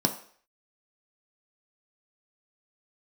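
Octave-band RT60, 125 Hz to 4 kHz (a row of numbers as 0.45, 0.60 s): 0.30, 0.45, 0.55, 0.50, 0.55, 0.55 s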